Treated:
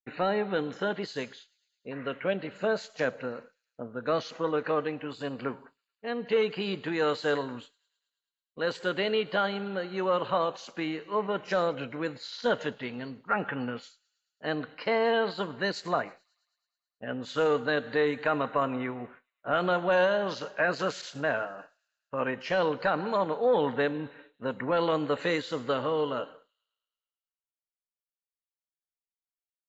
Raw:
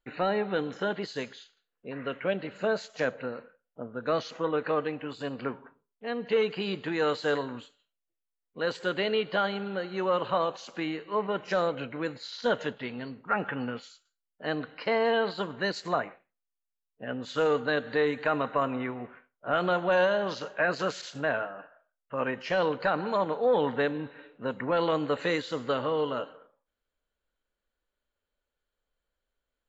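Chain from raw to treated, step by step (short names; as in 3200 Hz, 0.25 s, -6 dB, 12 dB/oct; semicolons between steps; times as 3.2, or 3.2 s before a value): expander -44 dBFS; thin delay 0.108 s, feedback 66%, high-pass 4900 Hz, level -20 dB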